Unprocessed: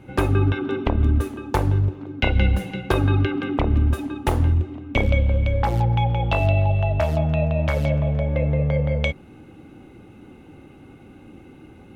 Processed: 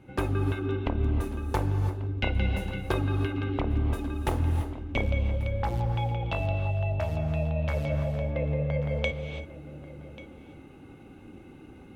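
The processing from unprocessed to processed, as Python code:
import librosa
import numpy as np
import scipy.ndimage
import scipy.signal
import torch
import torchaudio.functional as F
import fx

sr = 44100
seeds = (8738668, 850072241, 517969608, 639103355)

p1 = x + fx.echo_single(x, sr, ms=1139, db=-19.5, dry=0)
p2 = fx.rev_gated(p1, sr, seeds[0], gate_ms=360, shape='rising', drr_db=8.0)
p3 = fx.rider(p2, sr, range_db=4, speed_s=0.5)
y = F.gain(torch.from_numpy(p3), -8.0).numpy()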